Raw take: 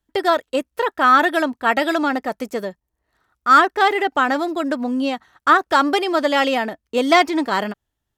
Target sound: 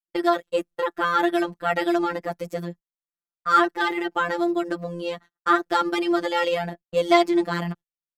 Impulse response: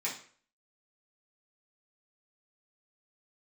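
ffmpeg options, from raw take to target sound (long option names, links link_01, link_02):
-filter_complex "[0:a]agate=range=-34dB:threshold=-37dB:ratio=16:detection=peak,acrossover=split=430[link_01][link_02];[link_01]acontrast=78[link_03];[link_03][link_02]amix=inputs=2:normalize=0,afftfilt=real='hypot(re,im)*cos(PI*b)':imag='0':win_size=1024:overlap=0.75,volume=-3dB"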